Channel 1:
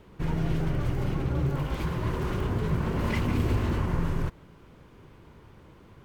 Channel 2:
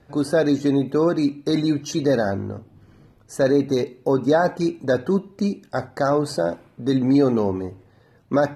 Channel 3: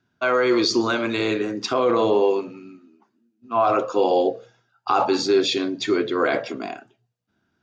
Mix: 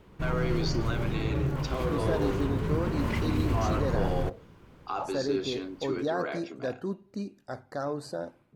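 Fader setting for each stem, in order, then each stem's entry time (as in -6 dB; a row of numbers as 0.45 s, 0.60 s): -2.0 dB, -13.0 dB, -13.5 dB; 0.00 s, 1.75 s, 0.00 s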